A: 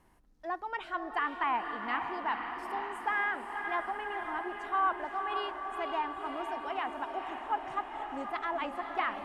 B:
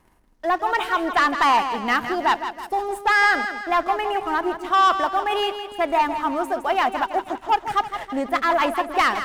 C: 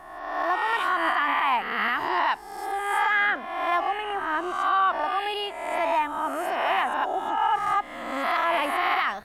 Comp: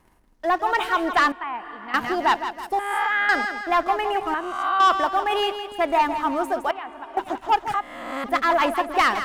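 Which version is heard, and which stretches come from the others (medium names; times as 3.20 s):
B
1.32–1.94 s: from A
2.79–3.29 s: from C
4.34–4.80 s: from C
6.71–7.17 s: from A
7.74–8.24 s: from C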